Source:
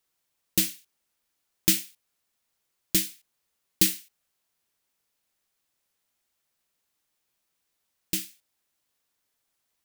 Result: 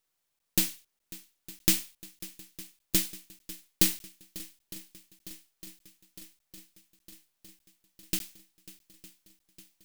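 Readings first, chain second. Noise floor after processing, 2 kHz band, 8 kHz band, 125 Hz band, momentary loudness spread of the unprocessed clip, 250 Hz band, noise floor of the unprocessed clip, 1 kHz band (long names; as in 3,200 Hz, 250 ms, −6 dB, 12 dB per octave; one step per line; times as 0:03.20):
−80 dBFS, −2.0 dB, −2.5 dB, −2.0 dB, 14 LU, −2.0 dB, −79 dBFS, can't be measured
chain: gain on one half-wave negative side −7 dB
on a send: feedback echo with a long and a short gap by turns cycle 908 ms, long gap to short 1.5 to 1, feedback 67%, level −19 dB
on the sum: regular buffer underruns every 0.60 s, samples 512, zero, from 0:00.39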